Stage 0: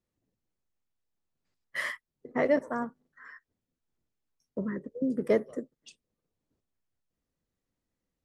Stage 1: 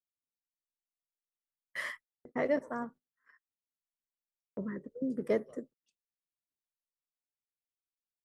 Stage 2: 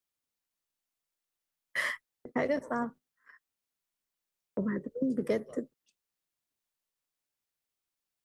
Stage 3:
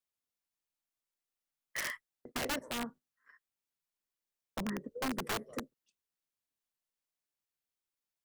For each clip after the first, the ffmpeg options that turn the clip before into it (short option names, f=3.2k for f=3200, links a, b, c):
-af "agate=range=-25dB:threshold=-46dB:ratio=16:detection=peak,volume=-5dB"
-filter_complex "[0:a]acrossover=split=140|3000[a][b][c];[b]acompressor=threshold=-34dB:ratio=6[d];[a][d][c]amix=inputs=3:normalize=0,volume=7dB"
-af "aeval=exprs='(mod(16.8*val(0)+1,2)-1)/16.8':c=same,volume=-5dB"